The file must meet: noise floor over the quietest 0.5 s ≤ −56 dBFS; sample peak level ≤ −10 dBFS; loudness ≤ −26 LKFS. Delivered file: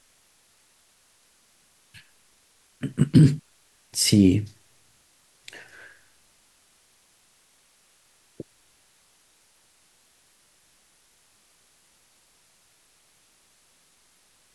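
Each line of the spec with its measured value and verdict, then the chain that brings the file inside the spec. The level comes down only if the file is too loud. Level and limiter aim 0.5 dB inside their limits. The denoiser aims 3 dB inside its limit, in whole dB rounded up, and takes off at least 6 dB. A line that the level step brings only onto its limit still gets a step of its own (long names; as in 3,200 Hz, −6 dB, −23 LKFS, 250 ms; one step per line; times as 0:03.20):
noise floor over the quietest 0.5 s −62 dBFS: in spec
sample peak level −5.5 dBFS: out of spec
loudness −21.0 LKFS: out of spec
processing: level −5.5 dB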